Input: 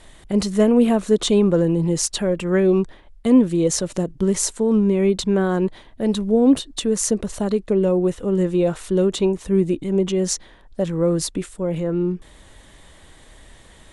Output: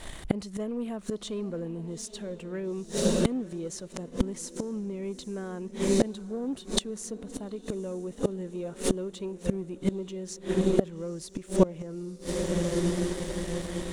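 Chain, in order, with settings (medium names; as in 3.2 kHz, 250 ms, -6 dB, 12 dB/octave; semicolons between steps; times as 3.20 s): echo that smears into a reverb 878 ms, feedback 52%, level -14.5 dB; waveshaping leveller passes 1; inverted gate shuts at -14 dBFS, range -25 dB; trim +4.5 dB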